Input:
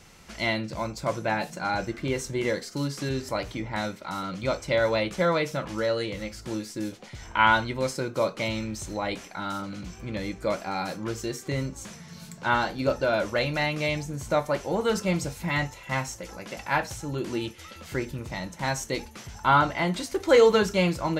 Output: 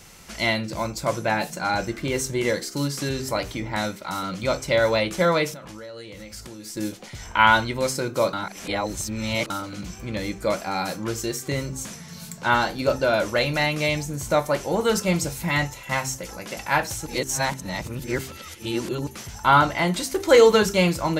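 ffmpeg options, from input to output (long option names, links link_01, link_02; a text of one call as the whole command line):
ffmpeg -i in.wav -filter_complex "[0:a]asettb=1/sr,asplit=3[link_01][link_02][link_03];[link_01]atrim=end=5.534[link_04];[link_02]atrim=start=5.53:end=6.77,asetpts=PTS-STARTPTS,afade=type=in:duration=0.004:curve=qsin,afade=type=out:start_time=1.236:duration=0.004:curve=qsin,acompressor=threshold=-39dB:ratio=10:attack=3.2:release=140:knee=1:detection=peak[link_05];[link_03]atrim=start=6.766[link_06];[link_04][link_05]acrossfade=duration=0.004:curve1=hsin:curve2=qsin[link_07];[link_07][link_06]acrossfade=duration=0.004:curve1=qsin:curve2=hsin,asplit=5[link_08][link_09][link_10][link_11][link_12];[link_08]atrim=end=8.332[link_13];[link_09]atrim=start=8.328:end=9.502,asetpts=PTS-STARTPTS,areverse[link_14];[link_10]atrim=start=9.498:end=17.062[link_15];[link_11]atrim=start=17.058:end=19.072,asetpts=PTS-STARTPTS,areverse[link_16];[link_12]atrim=start=19.068[link_17];[link_13][link_14]acrossfade=duration=0.004:curve1=hsin:curve2=hsin[link_18];[link_18][link_15]acrossfade=duration=0.004:curve1=hsin:curve2=hsin[link_19];[link_19][link_16]acrossfade=duration=0.004:curve1=hsin:curve2=hsin[link_20];[link_20][link_17]acrossfade=duration=0.004:curve1=hsin:curve2=hsin,highshelf=frequency=7500:gain=10,bandreject=frequency=65.99:width_type=h:width=4,bandreject=frequency=131.98:width_type=h:width=4,bandreject=frequency=197.97:width_type=h:width=4,bandreject=frequency=263.96:width_type=h:width=4,bandreject=frequency=329.95:width_type=h:width=4,bandreject=frequency=395.94:width_type=h:width=4,volume=3.5dB" out.wav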